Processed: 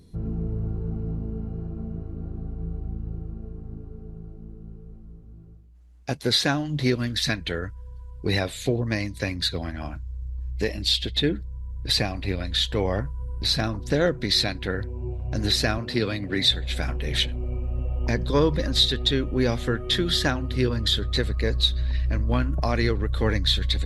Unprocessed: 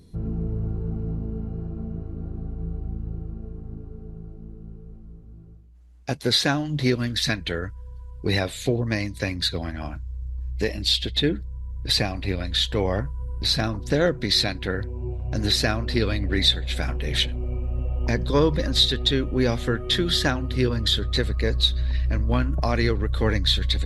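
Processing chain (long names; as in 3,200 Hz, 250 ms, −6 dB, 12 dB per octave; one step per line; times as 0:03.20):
0:15.78–0:16.51: high-pass filter 100 Hz 24 dB per octave
level −1 dB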